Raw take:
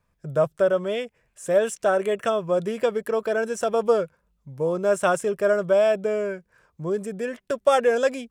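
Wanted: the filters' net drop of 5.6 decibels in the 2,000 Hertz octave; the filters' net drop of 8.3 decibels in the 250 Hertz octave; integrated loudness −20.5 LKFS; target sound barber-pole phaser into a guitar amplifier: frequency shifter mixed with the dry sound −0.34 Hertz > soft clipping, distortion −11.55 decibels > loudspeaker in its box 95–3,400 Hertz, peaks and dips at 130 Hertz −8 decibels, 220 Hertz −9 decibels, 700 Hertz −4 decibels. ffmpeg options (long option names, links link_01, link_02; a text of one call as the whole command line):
ffmpeg -i in.wav -filter_complex "[0:a]equalizer=frequency=250:width_type=o:gain=-7.5,equalizer=frequency=2000:width_type=o:gain=-8,asplit=2[link_01][link_02];[link_02]afreqshift=-0.34[link_03];[link_01][link_03]amix=inputs=2:normalize=1,asoftclip=threshold=-22.5dB,highpass=95,equalizer=frequency=130:width_type=q:width=4:gain=-8,equalizer=frequency=220:width_type=q:width=4:gain=-9,equalizer=frequency=700:width_type=q:width=4:gain=-4,lowpass=frequency=3400:width=0.5412,lowpass=frequency=3400:width=1.3066,volume=12dB" out.wav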